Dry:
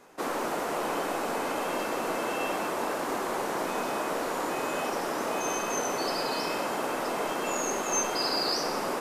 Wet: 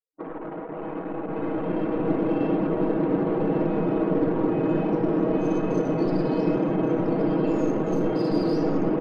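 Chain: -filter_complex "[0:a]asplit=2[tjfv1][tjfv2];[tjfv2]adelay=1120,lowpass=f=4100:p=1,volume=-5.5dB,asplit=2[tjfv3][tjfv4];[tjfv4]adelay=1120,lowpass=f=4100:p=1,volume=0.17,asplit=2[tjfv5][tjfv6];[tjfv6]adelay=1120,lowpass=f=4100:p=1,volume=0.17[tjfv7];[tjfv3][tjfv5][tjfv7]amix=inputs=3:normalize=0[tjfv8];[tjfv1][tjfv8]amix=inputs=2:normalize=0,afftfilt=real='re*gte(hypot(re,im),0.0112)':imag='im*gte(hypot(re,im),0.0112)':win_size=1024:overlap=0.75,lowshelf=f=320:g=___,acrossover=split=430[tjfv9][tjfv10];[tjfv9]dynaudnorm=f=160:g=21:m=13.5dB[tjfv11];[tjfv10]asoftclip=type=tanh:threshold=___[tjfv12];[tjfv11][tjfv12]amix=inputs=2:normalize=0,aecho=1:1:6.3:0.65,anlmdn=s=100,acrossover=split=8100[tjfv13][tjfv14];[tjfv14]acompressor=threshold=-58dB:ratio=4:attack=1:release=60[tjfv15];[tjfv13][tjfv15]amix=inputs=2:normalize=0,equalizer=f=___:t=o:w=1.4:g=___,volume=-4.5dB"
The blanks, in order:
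8, -29.5dB, 7300, -10.5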